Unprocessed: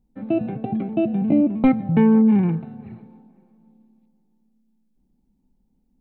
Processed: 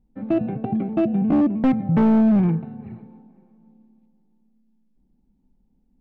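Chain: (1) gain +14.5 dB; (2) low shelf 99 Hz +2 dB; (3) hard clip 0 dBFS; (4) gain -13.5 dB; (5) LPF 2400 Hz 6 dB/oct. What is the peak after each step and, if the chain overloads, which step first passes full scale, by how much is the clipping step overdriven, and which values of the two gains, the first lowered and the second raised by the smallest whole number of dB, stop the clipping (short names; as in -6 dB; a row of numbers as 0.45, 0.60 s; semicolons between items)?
+7.0, +7.5, 0.0, -13.5, -13.5 dBFS; step 1, 7.5 dB; step 1 +6.5 dB, step 4 -5.5 dB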